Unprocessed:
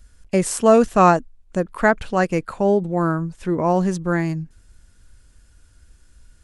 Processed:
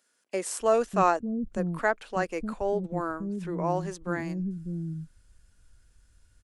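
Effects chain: bands offset in time highs, lows 0.6 s, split 280 Hz; gain -8.5 dB

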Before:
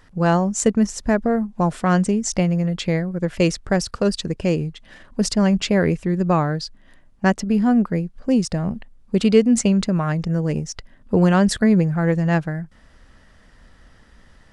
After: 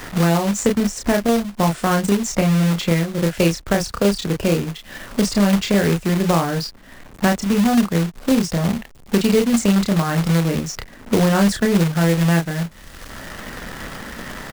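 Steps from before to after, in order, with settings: doubler 30 ms -3.5 dB; companded quantiser 4-bit; three-band squash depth 70%; gain -1 dB

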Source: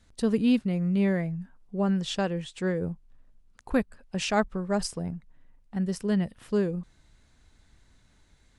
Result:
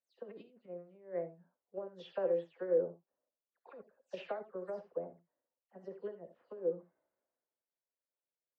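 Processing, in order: spectral delay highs early, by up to 0.152 s; dynamic EQ 740 Hz, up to -4 dB, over -39 dBFS, Q 1.5; negative-ratio compressor -28 dBFS, ratio -0.5; ladder band-pass 590 Hz, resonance 55%; non-linear reverb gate 0.1 s rising, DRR 10.5 dB; three-band expander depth 70%; gain +2 dB

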